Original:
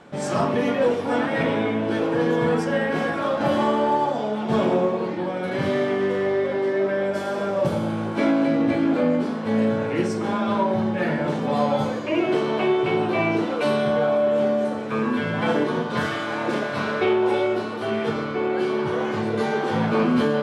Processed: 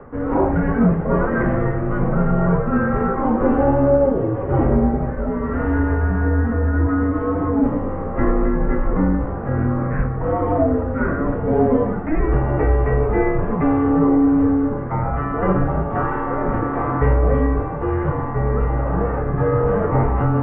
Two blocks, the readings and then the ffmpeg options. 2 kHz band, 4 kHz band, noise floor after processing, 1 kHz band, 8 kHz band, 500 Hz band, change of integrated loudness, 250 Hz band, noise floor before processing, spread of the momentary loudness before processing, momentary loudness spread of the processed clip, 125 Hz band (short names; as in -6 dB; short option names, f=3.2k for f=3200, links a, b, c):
-2.0 dB, under -20 dB, -25 dBFS, +2.0 dB, n/a, +0.5 dB, +3.5 dB, +4.0 dB, -28 dBFS, 5 LU, 6 LU, +11.0 dB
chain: -af "equalizer=f=780:t=o:w=0.21:g=7,areverse,acompressor=mode=upward:threshold=-25dB:ratio=2.5,areverse,highpass=f=280:t=q:w=0.5412,highpass=f=280:t=q:w=1.307,lowpass=f=2k:t=q:w=0.5176,lowpass=f=2k:t=q:w=0.7071,lowpass=f=2k:t=q:w=1.932,afreqshift=-310,volume=5dB"